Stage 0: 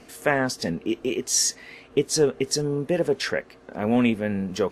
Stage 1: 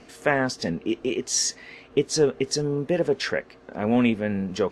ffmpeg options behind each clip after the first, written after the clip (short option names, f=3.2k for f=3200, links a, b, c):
-af "lowpass=6.9k"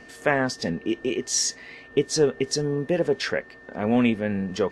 -af "aeval=exprs='val(0)+0.00447*sin(2*PI*1800*n/s)':c=same"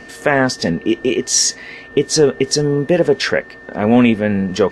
-af "alimiter=level_in=10.5dB:limit=-1dB:release=50:level=0:latency=1,volume=-1dB"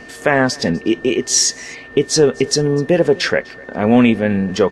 -af "aecho=1:1:250:0.0668"